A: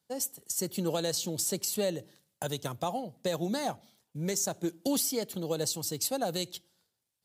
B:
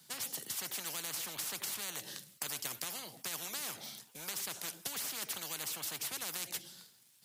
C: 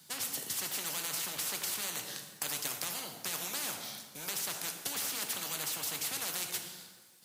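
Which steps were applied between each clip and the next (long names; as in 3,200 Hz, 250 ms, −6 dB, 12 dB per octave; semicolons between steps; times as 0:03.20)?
high-pass filter 140 Hz 24 dB per octave; parametric band 520 Hz −10 dB 2.1 octaves; every bin compressed towards the loudest bin 10 to 1; level −1 dB
dense smooth reverb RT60 1.5 s, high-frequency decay 0.7×, DRR 4 dB; level +2.5 dB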